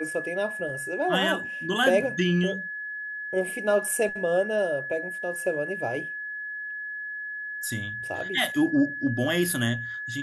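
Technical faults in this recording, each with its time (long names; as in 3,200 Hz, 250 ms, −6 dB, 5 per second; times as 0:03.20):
whistle 1,700 Hz −32 dBFS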